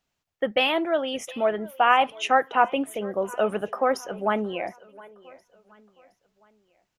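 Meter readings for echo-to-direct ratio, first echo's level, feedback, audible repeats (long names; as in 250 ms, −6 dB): −20.0 dB, −20.5 dB, 37%, 2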